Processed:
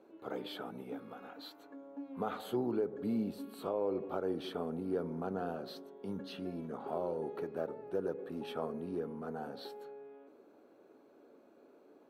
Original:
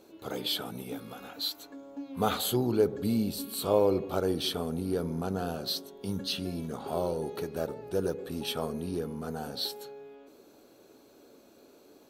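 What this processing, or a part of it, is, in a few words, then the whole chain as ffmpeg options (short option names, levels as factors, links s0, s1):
DJ mixer with the lows and highs turned down: -filter_complex "[0:a]acrossover=split=180 2200:gain=0.2 1 0.112[s0][s1][s2];[s0][s1][s2]amix=inputs=3:normalize=0,alimiter=limit=0.0891:level=0:latency=1:release=254,volume=0.668"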